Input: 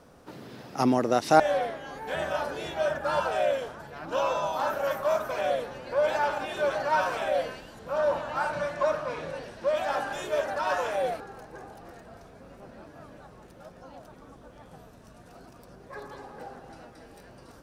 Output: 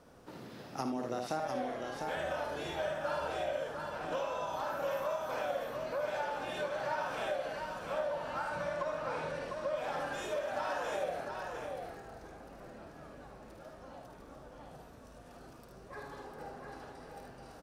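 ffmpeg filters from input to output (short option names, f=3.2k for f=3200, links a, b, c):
-filter_complex "[0:a]asplit=2[a][b];[b]aecho=0:1:52|76:0.473|0.531[c];[a][c]amix=inputs=2:normalize=0,acompressor=threshold=-28dB:ratio=6,asplit=2[d][e];[e]aecho=0:1:701:0.562[f];[d][f]amix=inputs=2:normalize=0,volume=-5.5dB"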